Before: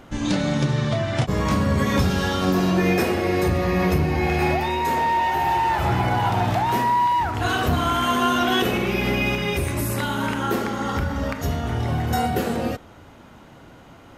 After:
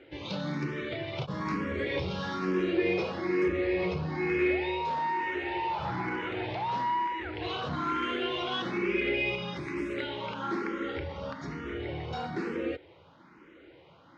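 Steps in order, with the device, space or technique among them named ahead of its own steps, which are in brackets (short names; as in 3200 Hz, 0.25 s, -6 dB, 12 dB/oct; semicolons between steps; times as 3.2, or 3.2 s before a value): barber-pole phaser into a guitar amplifier (endless phaser +1.1 Hz; soft clip -15.5 dBFS, distortion -21 dB; speaker cabinet 100–4600 Hz, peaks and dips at 110 Hz -9 dB, 230 Hz -8 dB, 340 Hz +8 dB, 500 Hz +4 dB, 710 Hz -8 dB, 2200 Hz +6 dB); gain -6 dB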